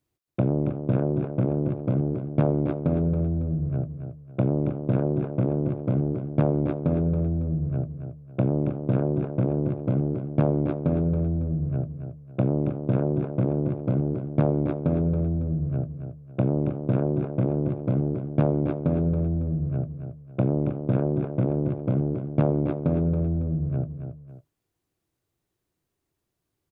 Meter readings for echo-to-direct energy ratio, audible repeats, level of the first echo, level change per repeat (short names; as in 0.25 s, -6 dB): -8.0 dB, 2, -8.5 dB, -9.0 dB